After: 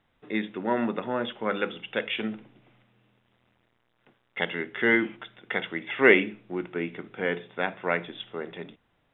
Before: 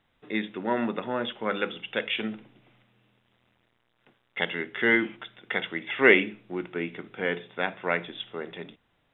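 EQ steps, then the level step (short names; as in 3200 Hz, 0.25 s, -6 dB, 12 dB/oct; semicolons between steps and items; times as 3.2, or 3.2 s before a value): high shelf 3500 Hz -7 dB; +1.0 dB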